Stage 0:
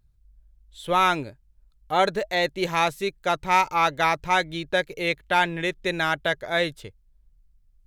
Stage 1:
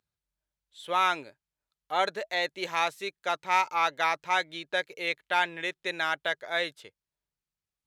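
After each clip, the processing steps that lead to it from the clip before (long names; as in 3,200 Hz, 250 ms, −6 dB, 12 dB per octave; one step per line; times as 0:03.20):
meter weighting curve A
level −5 dB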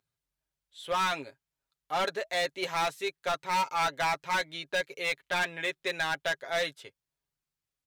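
comb filter 7.4 ms, depth 55%
hard clipping −24 dBFS, distortion −8 dB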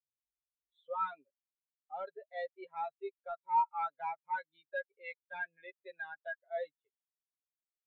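upward compression, threshold −33 dBFS
every bin expanded away from the loudest bin 2.5 to 1
level +1 dB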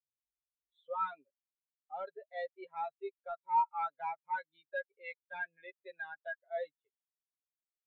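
no processing that can be heard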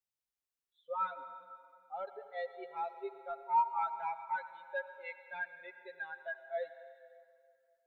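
convolution reverb RT60 2.3 s, pre-delay 76 ms, DRR 10 dB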